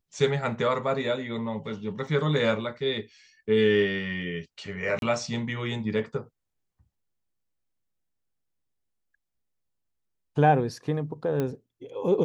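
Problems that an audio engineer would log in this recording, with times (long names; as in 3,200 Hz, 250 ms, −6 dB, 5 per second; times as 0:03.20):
0:02.07: drop-out 3 ms
0:04.99–0:05.02: drop-out 32 ms
0:11.40: click −16 dBFS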